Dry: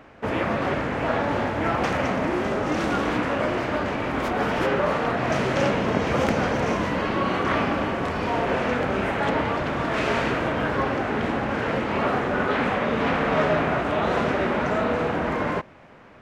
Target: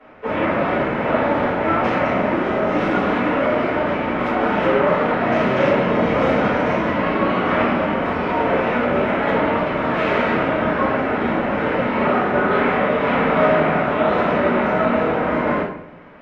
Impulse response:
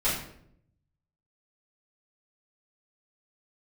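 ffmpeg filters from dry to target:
-filter_complex "[0:a]acrossover=split=190 3600:gain=0.251 1 0.158[a][b][c];[a][b][c]amix=inputs=3:normalize=0[d];[1:a]atrim=start_sample=2205[e];[d][e]afir=irnorm=-1:irlink=0,volume=-5.5dB"

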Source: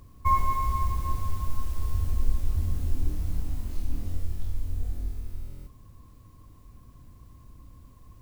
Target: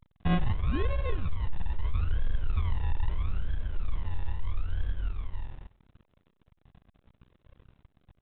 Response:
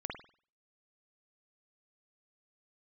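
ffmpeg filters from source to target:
-filter_complex "[0:a]aecho=1:1:1.8:0.79,aresample=11025,aeval=exprs='sgn(val(0))*max(abs(val(0))-0.00891,0)':c=same,aresample=44100,acrusher=samples=38:mix=1:aa=0.000001:lfo=1:lforange=22.8:lforate=0.77,asoftclip=type=tanh:threshold=-17dB,asplit=2[a][b];[b]adelay=96,lowpass=f=1.4k:p=1,volume=-23dB,asplit=2[c][d];[d]adelay=96,lowpass=f=1.4k:p=1,volume=0.43,asplit=2[e][f];[f]adelay=96,lowpass=f=1.4k:p=1,volume=0.43[g];[c][e][g]amix=inputs=3:normalize=0[h];[a][h]amix=inputs=2:normalize=0,volume=-2.5dB" -ar 8000 -c:a pcm_alaw

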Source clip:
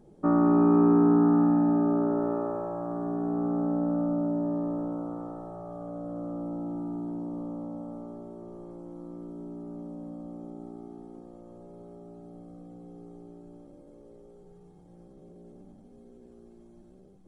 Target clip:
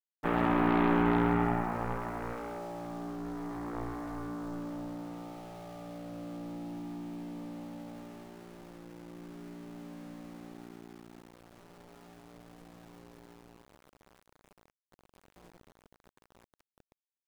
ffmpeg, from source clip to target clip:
-af "aeval=exprs='0.266*(cos(1*acos(clip(val(0)/0.266,-1,1)))-cos(1*PI/2))+0.0531*(cos(3*acos(clip(val(0)/0.266,-1,1)))-cos(3*PI/2))+0.00596*(cos(6*acos(clip(val(0)/0.266,-1,1)))-cos(6*PI/2))+0.0473*(cos(7*acos(clip(val(0)/0.266,-1,1)))-cos(7*PI/2))':c=same,aecho=1:1:68|136|204|272:0.398|0.131|0.0434|0.0143,aeval=exprs='val(0)*gte(abs(val(0)),0.00531)':c=same,volume=-4dB"

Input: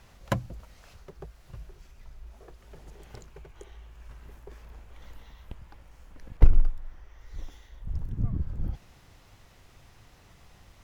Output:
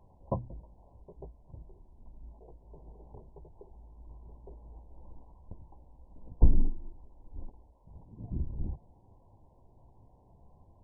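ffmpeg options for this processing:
-filter_complex "[0:a]asplit=3[a][b][c];[a]afade=t=out:st=7.7:d=0.02[d];[b]aemphasis=mode=production:type=riaa,afade=t=in:st=7.7:d=0.02,afade=t=out:st=8.3:d=0.02[e];[c]afade=t=in:st=8.3:d=0.02[f];[d][e][f]amix=inputs=3:normalize=0,flanger=delay=9.9:depth=8.5:regen=-30:speed=0.55:shape=triangular" -ar 22050 -c:a mp2 -b:a 8k

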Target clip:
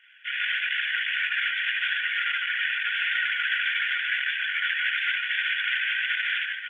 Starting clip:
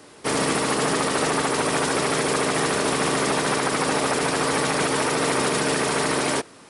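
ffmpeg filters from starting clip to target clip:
-filter_complex "[0:a]asplit=2[a][b];[b]adelay=80,highpass=300,lowpass=3.4k,asoftclip=type=hard:threshold=-18.5dB,volume=-10dB[c];[a][c]amix=inputs=2:normalize=0,afftfilt=real='re*between(b*sr/4096,1400,3500)':imag='im*between(b*sr/4096,1400,3500)':win_size=4096:overlap=0.75,asplit=2[d][e];[e]aecho=0:1:53|136|165|529:0.398|0.708|0.133|0.473[f];[d][f]amix=inputs=2:normalize=0,flanger=delay=18:depth=6.4:speed=0.91,volume=5dB" -ar 48000 -c:a libopus -b:a 10k

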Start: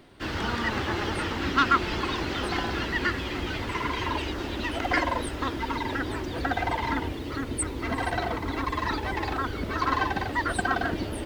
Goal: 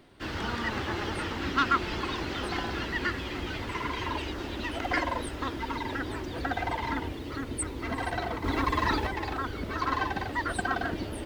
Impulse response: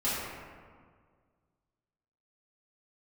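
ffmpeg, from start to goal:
-filter_complex "[0:a]asettb=1/sr,asplit=3[a][b][c];[a]atrim=end=8.444[d];[b]atrim=start=8.44:end=9.07,asetpts=PTS-STARTPTS,afade=t=in:d=0.004:c=qsin,afade=t=out:st=0.626:d=0.004:c=qsin,acontrast=34[e];[c]atrim=start=9.066[f];[d][e]acrossfade=d=0.004:c1=hsin:c2=qsin[g];[g][f]acrossfade=d=0.004:c1=qsin:c2=hsin,volume=-3.5dB"

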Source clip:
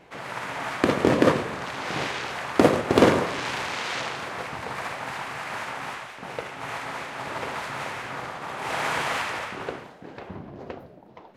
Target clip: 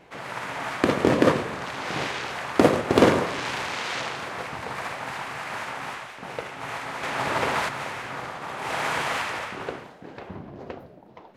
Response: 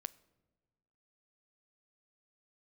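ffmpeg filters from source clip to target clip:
-filter_complex "[0:a]asettb=1/sr,asplit=3[a][b][c];[a]atrim=end=7.034[d];[b]atrim=start=7.03:end=7.69,asetpts=PTS-STARTPTS,afade=t=in:d=0.004:c=qsin,afade=t=out:st=0.656:d=0.004:c=qsin,acontrast=78[e];[c]atrim=start=7.686[f];[d][e]acrossfade=d=0.004:c1=hsin:c2=qsin[g];[g][f]acrossfade=d=0.004:c1=qsin:c2=hsin"

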